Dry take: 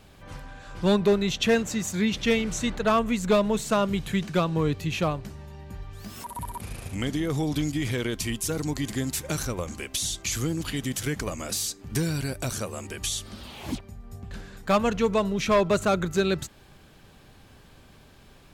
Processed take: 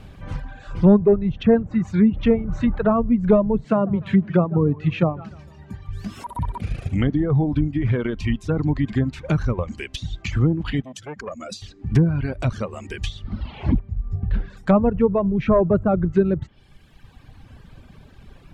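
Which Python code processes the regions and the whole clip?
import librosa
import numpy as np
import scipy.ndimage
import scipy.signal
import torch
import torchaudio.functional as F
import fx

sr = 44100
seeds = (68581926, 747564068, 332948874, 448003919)

y = fx.chain(x, sr, fx.highpass(hz=120.0, slope=12),
    fx.echo_warbled(ms=148, feedback_pct=50, rate_hz=2.8, cents=152, wet_db=-13.5), at=(3.65, 5.89))
y = fx.chain(y, sr, fx.spec_expand(power=1.6),
    fx.highpass(hz=420.0, slope=6),
    fx.transformer_sat(knee_hz=1300.0), at=(10.82, 11.62))
y = fx.chain(y, sr, fx.lowpass(hz=4600.0, slope=12),
    fx.low_shelf(hz=110.0, db=8.5), at=(13.24, 14.5))
y = fx.env_lowpass_down(y, sr, base_hz=830.0, full_db=-21.5)
y = fx.dereverb_blind(y, sr, rt60_s=1.8)
y = fx.bass_treble(y, sr, bass_db=8, treble_db=-8)
y = y * librosa.db_to_amplitude(5.5)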